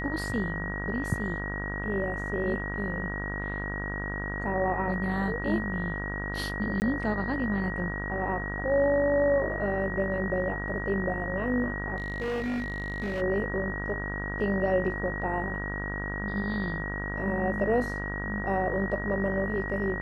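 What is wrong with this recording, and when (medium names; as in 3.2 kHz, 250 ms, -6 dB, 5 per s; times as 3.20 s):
buzz 50 Hz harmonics 38 -35 dBFS
whine 1.9 kHz -35 dBFS
6.80–6.82 s: dropout 19 ms
11.96–13.22 s: clipped -27.5 dBFS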